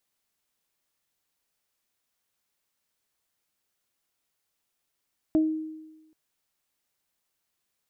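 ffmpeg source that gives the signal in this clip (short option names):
-f lavfi -i "aevalsrc='0.141*pow(10,-3*t/1.1)*sin(2*PI*314*t)+0.0398*pow(10,-3*t/0.25)*sin(2*PI*628*t)':d=0.78:s=44100"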